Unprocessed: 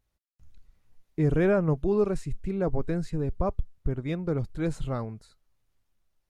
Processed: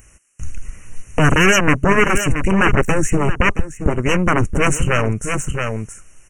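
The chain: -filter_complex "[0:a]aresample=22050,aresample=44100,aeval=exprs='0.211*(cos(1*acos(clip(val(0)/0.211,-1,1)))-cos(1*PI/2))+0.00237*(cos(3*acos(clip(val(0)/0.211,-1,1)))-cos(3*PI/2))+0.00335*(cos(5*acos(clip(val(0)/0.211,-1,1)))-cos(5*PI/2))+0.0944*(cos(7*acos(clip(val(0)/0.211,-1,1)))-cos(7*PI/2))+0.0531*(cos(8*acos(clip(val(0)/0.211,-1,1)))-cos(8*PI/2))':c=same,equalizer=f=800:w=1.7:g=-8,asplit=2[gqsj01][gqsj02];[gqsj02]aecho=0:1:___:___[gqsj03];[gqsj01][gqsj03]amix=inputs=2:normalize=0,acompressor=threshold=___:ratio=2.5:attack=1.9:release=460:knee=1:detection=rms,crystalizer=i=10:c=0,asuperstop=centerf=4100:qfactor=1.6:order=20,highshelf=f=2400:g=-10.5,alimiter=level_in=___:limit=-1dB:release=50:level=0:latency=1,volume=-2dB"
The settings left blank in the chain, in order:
673, 0.224, -37dB, 23.5dB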